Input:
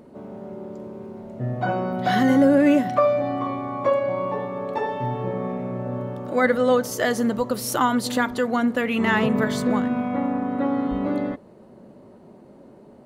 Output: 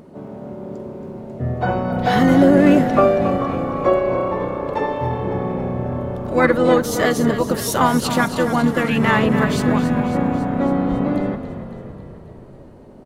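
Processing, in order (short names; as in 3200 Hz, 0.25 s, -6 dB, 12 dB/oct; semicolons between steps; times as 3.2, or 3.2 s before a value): harmoniser -7 st -6 dB, +3 st -15 dB; frequency-shifting echo 0.275 s, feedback 62%, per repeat -32 Hz, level -10.5 dB; gain +3 dB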